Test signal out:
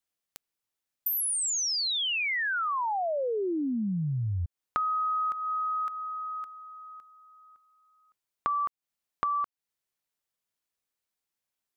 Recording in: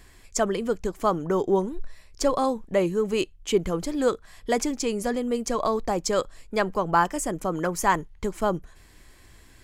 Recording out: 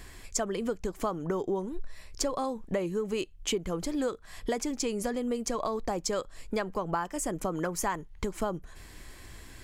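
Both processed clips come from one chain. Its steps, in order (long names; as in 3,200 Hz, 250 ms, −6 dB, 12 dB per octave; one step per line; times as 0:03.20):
downward compressor 6 to 1, threshold −33 dBFS
level +4.5 dB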